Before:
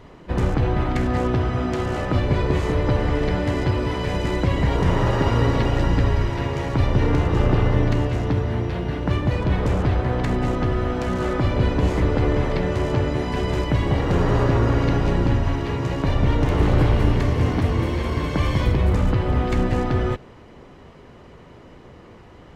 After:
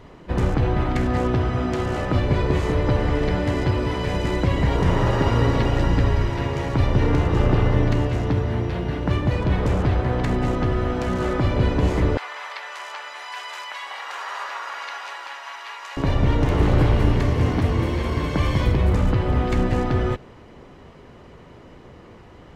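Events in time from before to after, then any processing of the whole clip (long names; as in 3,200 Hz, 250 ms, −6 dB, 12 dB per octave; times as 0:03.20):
0:12.17–0:15.97: high-pass filter 930 Hz 24 dB per octave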